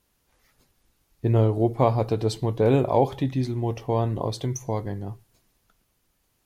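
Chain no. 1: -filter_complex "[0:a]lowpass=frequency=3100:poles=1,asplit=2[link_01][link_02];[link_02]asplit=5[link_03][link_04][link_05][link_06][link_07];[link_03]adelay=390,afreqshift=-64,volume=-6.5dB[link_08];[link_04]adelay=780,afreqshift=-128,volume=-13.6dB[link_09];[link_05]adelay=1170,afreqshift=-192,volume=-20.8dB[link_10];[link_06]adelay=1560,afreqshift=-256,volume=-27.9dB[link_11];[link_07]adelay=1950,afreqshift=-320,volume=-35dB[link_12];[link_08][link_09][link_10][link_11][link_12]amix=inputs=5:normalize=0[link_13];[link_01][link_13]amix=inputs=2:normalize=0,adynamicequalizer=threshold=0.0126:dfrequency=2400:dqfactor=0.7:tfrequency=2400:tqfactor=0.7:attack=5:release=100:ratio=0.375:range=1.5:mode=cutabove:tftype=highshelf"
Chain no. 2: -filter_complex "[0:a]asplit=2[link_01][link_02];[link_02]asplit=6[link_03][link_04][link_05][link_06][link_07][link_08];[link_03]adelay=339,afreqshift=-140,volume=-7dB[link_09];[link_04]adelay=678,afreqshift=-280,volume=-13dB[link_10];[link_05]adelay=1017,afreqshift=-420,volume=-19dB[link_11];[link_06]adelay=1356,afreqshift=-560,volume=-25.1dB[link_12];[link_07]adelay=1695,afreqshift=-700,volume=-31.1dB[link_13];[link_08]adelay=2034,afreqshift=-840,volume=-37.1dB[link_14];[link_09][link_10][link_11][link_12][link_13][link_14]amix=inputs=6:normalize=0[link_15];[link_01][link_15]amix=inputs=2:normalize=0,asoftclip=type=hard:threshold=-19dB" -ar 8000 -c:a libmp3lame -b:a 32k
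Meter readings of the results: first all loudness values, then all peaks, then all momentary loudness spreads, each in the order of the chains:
−24.0, −26.5 LKFS; −6.0, −18.0 dBFS; 13, 14 LU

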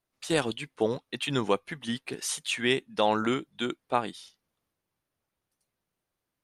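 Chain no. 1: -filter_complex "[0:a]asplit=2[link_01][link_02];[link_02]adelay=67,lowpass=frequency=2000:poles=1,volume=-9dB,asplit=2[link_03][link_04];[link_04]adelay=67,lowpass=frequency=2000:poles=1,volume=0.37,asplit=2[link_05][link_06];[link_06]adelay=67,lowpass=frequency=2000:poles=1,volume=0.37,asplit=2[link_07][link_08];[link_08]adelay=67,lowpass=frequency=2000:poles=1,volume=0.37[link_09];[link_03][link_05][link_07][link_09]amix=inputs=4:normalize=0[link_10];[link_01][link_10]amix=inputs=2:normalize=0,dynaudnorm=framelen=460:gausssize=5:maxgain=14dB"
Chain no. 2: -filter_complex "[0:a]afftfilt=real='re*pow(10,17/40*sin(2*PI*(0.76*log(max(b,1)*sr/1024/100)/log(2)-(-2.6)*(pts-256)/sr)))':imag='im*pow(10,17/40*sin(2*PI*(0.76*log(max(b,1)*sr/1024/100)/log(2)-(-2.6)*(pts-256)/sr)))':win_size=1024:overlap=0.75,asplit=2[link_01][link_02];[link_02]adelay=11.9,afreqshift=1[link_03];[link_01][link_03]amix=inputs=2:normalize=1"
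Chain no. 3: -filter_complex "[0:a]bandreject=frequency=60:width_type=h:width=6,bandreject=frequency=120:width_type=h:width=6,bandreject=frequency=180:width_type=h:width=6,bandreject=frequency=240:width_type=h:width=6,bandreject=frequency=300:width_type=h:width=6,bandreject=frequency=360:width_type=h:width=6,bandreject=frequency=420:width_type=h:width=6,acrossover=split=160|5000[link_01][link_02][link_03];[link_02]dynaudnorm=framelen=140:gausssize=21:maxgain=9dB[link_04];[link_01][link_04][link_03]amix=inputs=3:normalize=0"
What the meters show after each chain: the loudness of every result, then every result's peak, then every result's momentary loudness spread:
−22.0, −29.5, −24.0 LKFS; −1.0, −12.0, −3.0 dBFS; 10, 11, 11 LU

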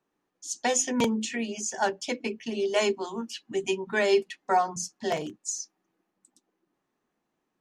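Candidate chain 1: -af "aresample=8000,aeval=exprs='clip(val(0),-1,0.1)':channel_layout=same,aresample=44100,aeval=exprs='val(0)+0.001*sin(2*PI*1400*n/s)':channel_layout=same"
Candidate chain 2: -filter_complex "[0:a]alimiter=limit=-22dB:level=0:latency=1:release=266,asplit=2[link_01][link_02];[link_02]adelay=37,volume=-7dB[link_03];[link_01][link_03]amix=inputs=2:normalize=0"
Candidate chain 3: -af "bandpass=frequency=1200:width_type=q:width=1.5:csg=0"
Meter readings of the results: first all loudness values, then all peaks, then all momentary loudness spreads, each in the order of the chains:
−29.0, −32.5, −36.0 LKFS; −12.0, −19.0, −17.0 dBFS; 8, 6, 15 LU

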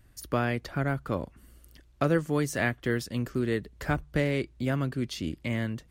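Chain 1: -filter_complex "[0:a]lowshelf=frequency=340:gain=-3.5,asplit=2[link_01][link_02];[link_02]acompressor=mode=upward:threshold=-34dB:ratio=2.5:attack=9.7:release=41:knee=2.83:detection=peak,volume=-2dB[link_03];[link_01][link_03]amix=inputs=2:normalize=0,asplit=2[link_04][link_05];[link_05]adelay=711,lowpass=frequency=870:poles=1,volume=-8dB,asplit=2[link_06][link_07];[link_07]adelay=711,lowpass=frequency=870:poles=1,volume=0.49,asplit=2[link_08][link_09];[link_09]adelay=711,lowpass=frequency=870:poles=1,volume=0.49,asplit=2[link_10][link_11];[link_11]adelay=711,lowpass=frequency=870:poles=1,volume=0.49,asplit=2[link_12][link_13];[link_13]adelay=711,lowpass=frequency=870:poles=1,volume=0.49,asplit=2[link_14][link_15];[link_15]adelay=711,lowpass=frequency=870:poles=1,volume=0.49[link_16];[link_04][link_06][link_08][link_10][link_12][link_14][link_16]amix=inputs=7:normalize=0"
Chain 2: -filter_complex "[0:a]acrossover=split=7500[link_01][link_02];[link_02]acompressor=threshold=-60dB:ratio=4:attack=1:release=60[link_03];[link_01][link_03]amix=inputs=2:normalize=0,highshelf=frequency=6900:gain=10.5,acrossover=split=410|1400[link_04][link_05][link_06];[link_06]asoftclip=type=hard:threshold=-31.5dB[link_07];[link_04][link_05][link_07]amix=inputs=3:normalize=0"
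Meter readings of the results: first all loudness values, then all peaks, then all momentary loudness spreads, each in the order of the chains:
−26.5, −30.0 LKFS; −8.5, −12.5 dBFS; 6, 5 LU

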